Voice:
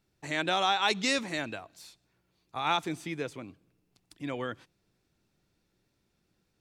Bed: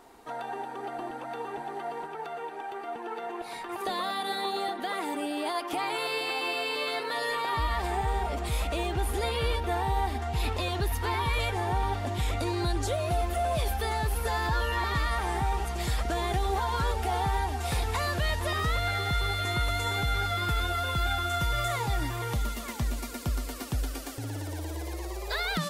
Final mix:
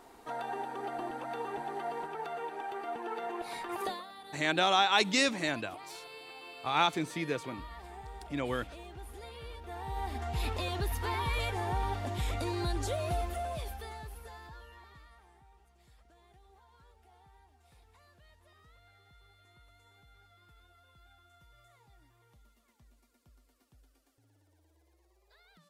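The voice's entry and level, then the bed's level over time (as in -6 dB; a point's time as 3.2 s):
4.10 s, +1.0 dB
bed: 3.85 s -1.5 dB
4.07 s -17.5 dB
9.54 s -17.5 dB
10.23 s -4.5 dB
13.12 s -4.5 dB
15.44 s -33.5 dB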